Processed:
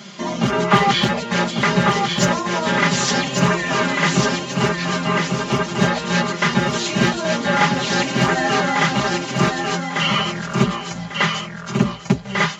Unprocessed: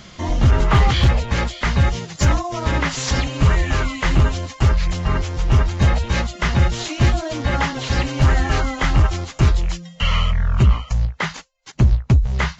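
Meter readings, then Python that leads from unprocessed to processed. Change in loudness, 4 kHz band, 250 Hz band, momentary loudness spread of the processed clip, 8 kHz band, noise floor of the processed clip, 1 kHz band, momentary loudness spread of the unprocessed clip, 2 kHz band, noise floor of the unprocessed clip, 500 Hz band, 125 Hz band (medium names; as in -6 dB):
+0.5 dB, +5.5 dB, +5.0 dB, 5 LU, no reading, -32 dBFS, +6.0 dB, 6 LU, +5.5 dB, -43 dBFS, +6.0 dB, -6.0 dB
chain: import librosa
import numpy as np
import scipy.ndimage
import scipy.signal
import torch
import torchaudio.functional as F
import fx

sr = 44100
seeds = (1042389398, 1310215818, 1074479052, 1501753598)

y = scipy.signal.sosfilt(scipy.signal.butter(4, 150.0, 'highpass', fs=sr, output='sos'), x)
y = y + 0.87 * np.pad(y, (int(5.0 * sr / 1000.0), 0))[:len(y)]
y = fx.echo_feedback(y, sr, ms=1146, feedback_pct=27, wet_db=-4.5)
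y = y * 10.0 ** (1.5 / 20.0)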